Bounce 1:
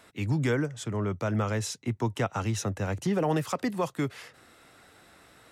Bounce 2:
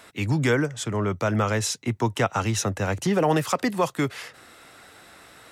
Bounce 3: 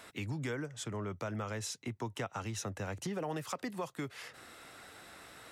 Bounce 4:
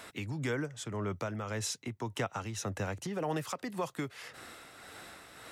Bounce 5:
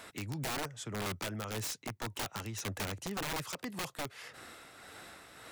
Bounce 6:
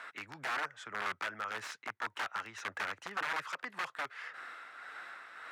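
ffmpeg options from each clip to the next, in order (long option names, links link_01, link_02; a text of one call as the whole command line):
ffmpeg -i in.wav -af "lowshelf=frequency=450:gain=-5,volume=8dB" out.wav
ffmpeg -i in.wav -af "acompressor=threshold=-37dB:ratio=2.5,volume=-4dB" out.wav
ffmpeg -i in.wav -af "tremolo=f=1.8:d=0.43,volume=4.5dB" out.wav
ffmpeg -i in.wav -af "aeval=exprs='(mod(29.9*val(0)+1,2)-1)/29.9':channel_layout=same,volume=-1.5dB" out.wav
ffmpeg -i in.wav -af "bandpass=frequency=1500:width_type=q:width=2:csg=0,volume=8.5dB" out.wav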